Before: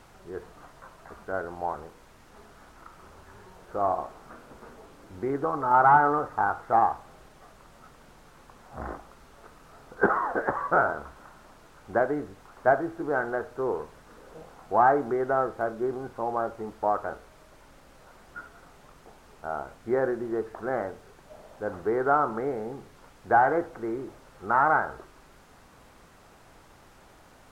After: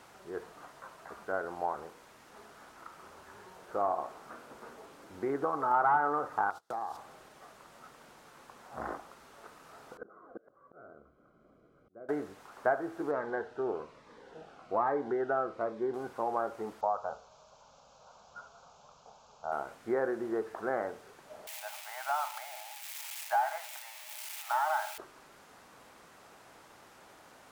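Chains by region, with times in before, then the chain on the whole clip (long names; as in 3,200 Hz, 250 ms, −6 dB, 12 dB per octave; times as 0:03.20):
0:06.50–0:06.97: noise gate −39 dBFS, range −29 dB + high shelf with overshoot 2,900 Hz +10.5 dB, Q 1.5 + downward compressor 5 to 1, threshold −34 dBFS
0:09.97–0:12.09: moving average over 49 samples + volume swells 781 ms
0:13.11–0:15.94: low-pass filter 4,400 Hz + phaser whose notches keep moving one way falling 1.2 Hz
0:16.81–0:19.52: bad sample-rate conversion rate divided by 3×, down none, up filtered + phaser with its sweep stopped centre 790 Hz, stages 4
0:21.47–0:24.98: spike at every zero crossing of −24 dBFS + Chebyshev high-pass with heavy ripple 600 Hz, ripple 9 dB
whole clip: high-pass filter 330 Hz 6 dB per octave; downward compressor 2 to 1, threshold −29 dBFS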